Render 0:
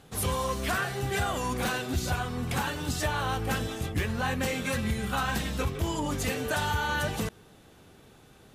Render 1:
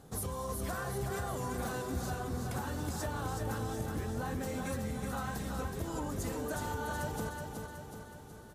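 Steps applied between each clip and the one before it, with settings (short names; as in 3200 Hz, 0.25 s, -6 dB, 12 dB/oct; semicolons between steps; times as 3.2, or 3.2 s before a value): bell 2700 Hz -12.5 dB 1.3 oct; compressor, threshold -35 dBFS, peak gain reduction 11 dB; feedback echo 0.372 s, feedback 55%, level -5 dB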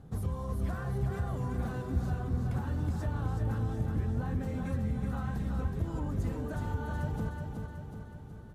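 tone controls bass +12 dB, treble -11 dB; gain -4 dB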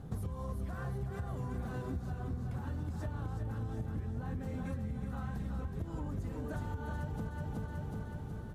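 compressor 12:1, threshold -39 dBFS, peak gain reduction 15.5 dB; gain +4.5 dB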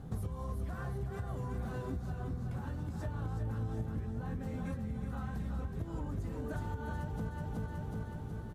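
doubler 18 ms -11 dB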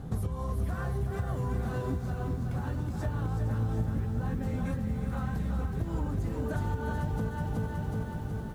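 lo-fi delay 0.462 s, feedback 35%, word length 10-bit, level -10 dB; gain +6 dB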